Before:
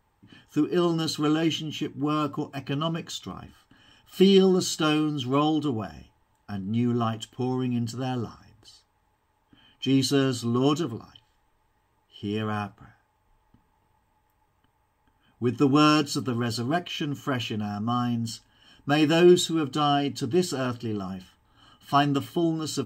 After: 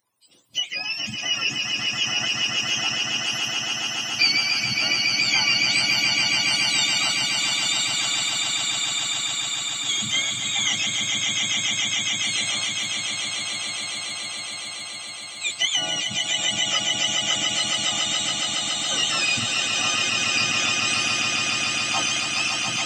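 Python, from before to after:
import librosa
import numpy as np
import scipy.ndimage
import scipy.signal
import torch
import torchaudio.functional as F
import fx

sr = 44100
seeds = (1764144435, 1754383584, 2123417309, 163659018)

p1 = fx.octave_mirror(x, sr, pivot_hz=940.0)
p2 = fx.tilt_shelf(p1, sr, db=-8.0, hz=970.0)
p3 = p2 + fx.echo_swell(p2, sr, ms=140, loudest=8, wet_db=-5, dry=0)
p4 = fx.hpss(p3, sr, part='harmonic', gain_db=-11)
y = F.gain(torch.from_numpy(p4), -1.0).numpy()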